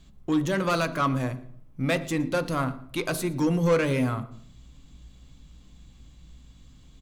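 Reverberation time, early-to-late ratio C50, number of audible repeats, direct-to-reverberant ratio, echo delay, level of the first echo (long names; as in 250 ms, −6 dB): 0.60 s, 15.0 dB, 1, 9.0 dB, 115 ms, −22.0 dB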